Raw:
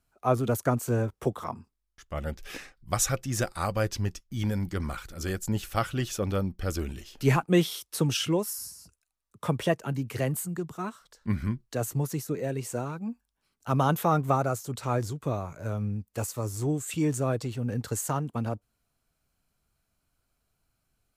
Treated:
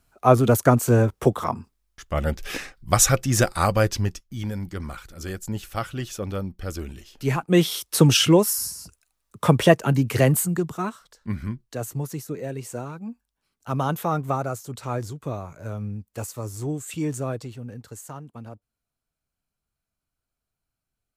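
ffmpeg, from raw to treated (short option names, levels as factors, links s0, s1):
-af "volume=10.6,afade=t=out:st=3.63:d=0.79:silence=0.316228,afade=t=in:st=7.37:d=0.63:silence=0.266073,afade=t=out:st=10.34:d=0.94:silence=0.281838,afade=t=out:st=17.22:d=0.58:silence=0.375837"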